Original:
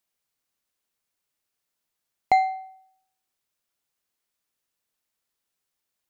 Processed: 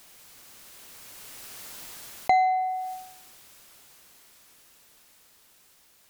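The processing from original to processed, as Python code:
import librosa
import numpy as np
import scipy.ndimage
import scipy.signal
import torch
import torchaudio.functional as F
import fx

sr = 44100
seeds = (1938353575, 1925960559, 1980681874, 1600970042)

y = fx.doppler_pass(x, sr, speed_mps=7, closest_m=3.9, pass_at_s=1.74)
y = fx.env_flatten(y, sr, amount_pct=70)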